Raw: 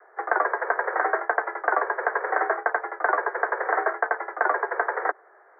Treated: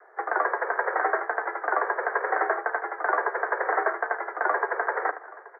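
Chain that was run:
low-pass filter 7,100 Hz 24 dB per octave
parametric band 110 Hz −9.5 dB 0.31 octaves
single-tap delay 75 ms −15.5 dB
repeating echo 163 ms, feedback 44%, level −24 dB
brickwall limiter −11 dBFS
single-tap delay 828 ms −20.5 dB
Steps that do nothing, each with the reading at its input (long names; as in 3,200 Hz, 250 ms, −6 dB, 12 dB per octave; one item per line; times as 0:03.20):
low-pass filter 7,100 Hz: nothing at its input above 2,300 Hz
parametric band 110 Hz: nothing at its input below 290 Hz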